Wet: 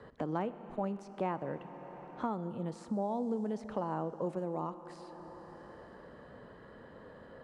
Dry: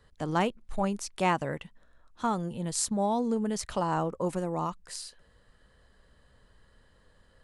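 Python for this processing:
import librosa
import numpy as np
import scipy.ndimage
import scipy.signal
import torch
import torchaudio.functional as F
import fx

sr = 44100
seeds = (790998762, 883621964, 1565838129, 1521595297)

y = fx.bandpass_q(x, sr, hz=390.0, q=0.53)
y = fx.rev_schroeder(y, sr, rt60_s=2.5, comb_ms=25, drr_db=13.5)
y = fx.band_squash(y, sr, depth_pct=70)
y = y * librosa.db_to_amplitude(-4.5)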